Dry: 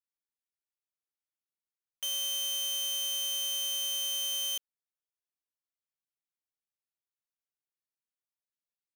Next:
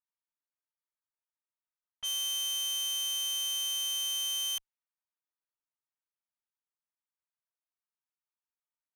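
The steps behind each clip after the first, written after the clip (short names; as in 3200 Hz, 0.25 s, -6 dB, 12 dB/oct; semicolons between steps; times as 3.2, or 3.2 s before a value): minimum comb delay 3.2 ms; low-pass opened by the level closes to 1700 Hz, open at -31.5 dBFS; resonant low shelf 590 Hz -14 dB, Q 1.5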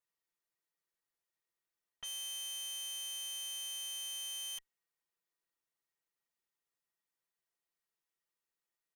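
comb 5.9 ms; small resonant body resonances 420/1900 Hz, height 11 dB, ringing for 50 ms; limiter -36.5 dBFS, peak gain reduction 10 dB; gain +1 dB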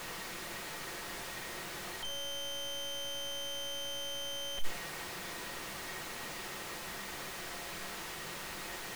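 infinite clipping; shoebox room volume 330 m³, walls furnished, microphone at 1 m; slew limiter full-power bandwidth 11 Hz; gain +11 dB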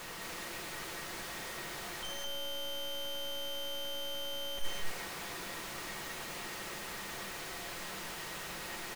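loudspeakers at several distances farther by 36 m -12 dB, 73 m -2 dB; gain -2 dB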